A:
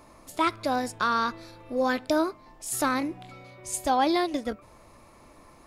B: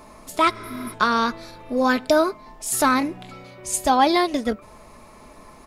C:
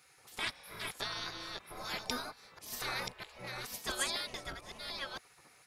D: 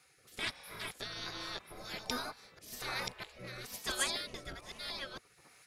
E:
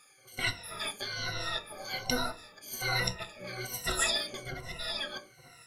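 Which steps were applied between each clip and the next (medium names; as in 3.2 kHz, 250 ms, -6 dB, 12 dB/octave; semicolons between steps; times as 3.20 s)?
spectral replace 0.58–0.91 s, 250–9600 Hz before; comb 4.7 ms, depth 38%; trim +6.5 dB
chunks repeated in reverse 647 ms, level -5.5 dB; spectral gate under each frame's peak -15 dB weak; trim -8 dB
rotary cabinet horn 1.2 Hz; trim +2 dB
drifting ripple filter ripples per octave 2, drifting -1.2 Hz, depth 22 dB; reverberation RT60 0.30 s, pre-delay 6 ms, DRR 5.5 dB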